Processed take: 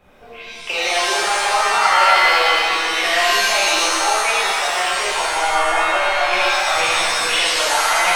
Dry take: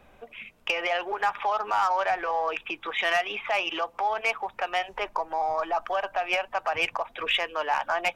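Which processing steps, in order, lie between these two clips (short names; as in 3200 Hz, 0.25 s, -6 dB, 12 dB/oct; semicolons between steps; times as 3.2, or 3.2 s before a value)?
shimmer reverb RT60 1.8 s, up +7 st, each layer -2 dB, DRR -8.5 dB; gain -1 dB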